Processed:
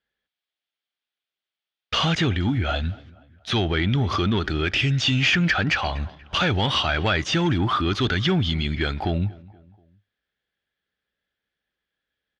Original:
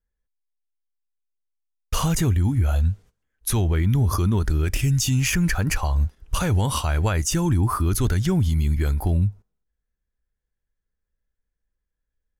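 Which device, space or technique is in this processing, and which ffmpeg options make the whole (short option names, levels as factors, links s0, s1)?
overdrive pedal into a guitar cabinet: -filter_complex "[0:a]equalizer=f=9100:w=4.2:g=3.5,asplit=2[s0][s1];[s1]adelay=239,lowpass=f=2100:p=1,volume=0.0708,asplit=2[s2][s3];[s3]adelay=239,lowpass=f=2100:p=1,volume=0.47,asplit=2[s4][s5];[s5]adelay=239,lowpass=f=2100:p=1,volume=0.47[s6];[s0][s2][s4][s6]amix=inputs=4:normalize=0,asplit=2[s7][s8];[s8]highpass=f=720:p=1,volume=7.94,asoftclip=type=tanh:threshold=0.299[s9];[s7][s9]amix=inputs=2:normalize=0,lowpass=f=4800:p=1,volume=0.501,highpass=87,equalizer=f=480:t=q:w=4:g=-4,equalizer=f=1000:t=q:w=4:g=-9,equalizer=f=3300:t=q:w=4:g=7,lowpass=f=4500:w=0.5412,lowpass=f=4500:w=1.3066"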